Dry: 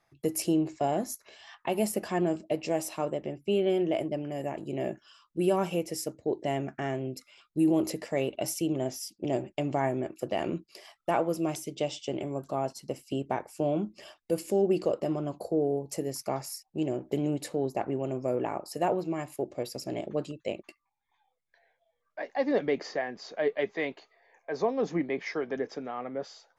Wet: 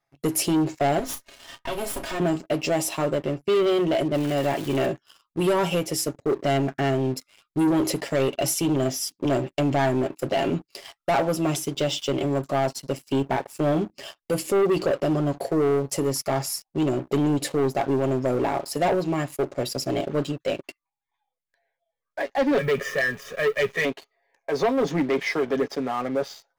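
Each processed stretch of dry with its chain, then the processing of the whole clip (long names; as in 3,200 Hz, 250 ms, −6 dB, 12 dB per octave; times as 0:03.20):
0:00.99–0:02.20: lower of the sound and its delayed copy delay 3.2 ms + downward compressor 2.5 to 1, threshold −39 dBFS + double-tracking delay 34 ms −8 dB
0:04.13–0:04.85: parametric band 2,300 Hz +6.5 dB 2.7 octaves + surface crackle 590 per second −39 dBFS
0:22.58–0:23.85: mu-law and A-law mismatch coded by mu + phaser with its sweep stopped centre 1,900 Hz, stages 4 + comb filter 1.7 ms, depth 90%
whole clip: dynamic equaliser 3,300 Hz, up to +5 dB, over −58 dBFS, Q 3.1; comb filter 7.3 ms, depth 51%; leveller curve on the samples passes 3; level −2.5 dB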